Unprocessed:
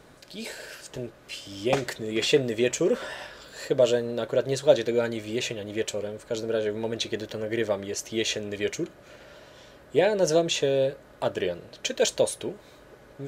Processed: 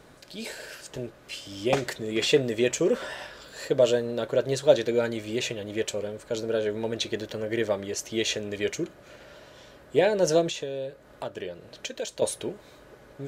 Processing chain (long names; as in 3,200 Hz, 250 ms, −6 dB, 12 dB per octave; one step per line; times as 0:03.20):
0:10.49–0:12.22: downward compressor 2.5 to 1, threshold −35 dBFS, peak gain reduction 11.5 dB